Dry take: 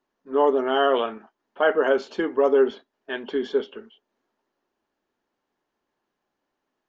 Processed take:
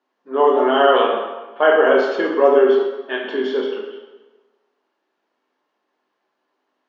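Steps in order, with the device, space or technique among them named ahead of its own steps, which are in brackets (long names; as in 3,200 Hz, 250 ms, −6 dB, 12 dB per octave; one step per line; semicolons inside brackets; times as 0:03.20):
supermarket ceiling speaker (band-pass filter 310–5,000 Hz; convolution reverb RT60 1.2 s, pre-delay 11 ms, DRR −1.5 dB)
level +4 dB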